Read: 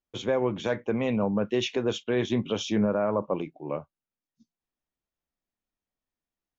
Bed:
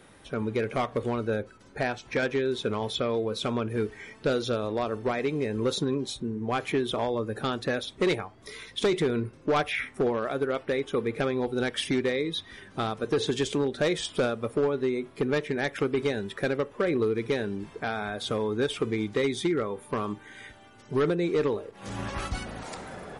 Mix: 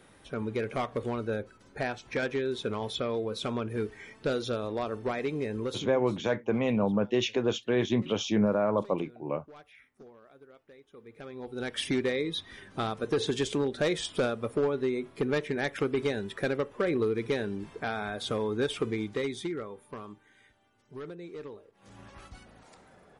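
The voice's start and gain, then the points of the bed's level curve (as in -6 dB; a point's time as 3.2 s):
5.60 s, -0.5 dB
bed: 5.56 s -3.5 dB
6.32 s -26.5 dB
10.87 s -26.5 dB
11.82 s -2 dB
18.83 s -2 dB
20.47 s -16.5 dB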